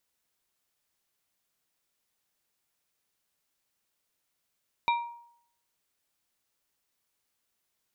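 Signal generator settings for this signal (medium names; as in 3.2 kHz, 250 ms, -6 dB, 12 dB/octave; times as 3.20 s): glass hit plate, lowest mode 944 Hz, modes 3, decay 0.67 s, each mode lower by 5.5 dB, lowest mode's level -21 dB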